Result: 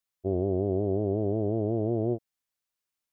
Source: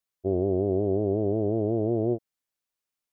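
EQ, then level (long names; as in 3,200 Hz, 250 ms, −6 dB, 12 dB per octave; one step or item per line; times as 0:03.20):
parametric band 410 Hz −3 dB 1.6 octaves
0.0 dB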